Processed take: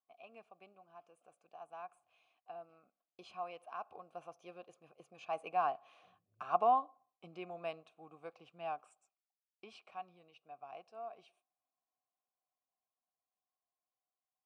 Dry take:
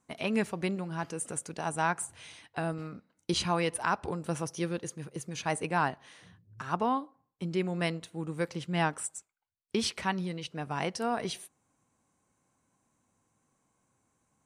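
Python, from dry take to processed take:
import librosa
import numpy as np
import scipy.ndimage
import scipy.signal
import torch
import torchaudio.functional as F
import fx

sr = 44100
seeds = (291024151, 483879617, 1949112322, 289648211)

y = fx.doppler_pass(x, sr, speed_mps=11, closest_m=7.2, pass_at_s=6.46)
y = fx.vowel_filter(y, sr, vowel='a')
y = y * librosa.db_to_amplitude(7.5)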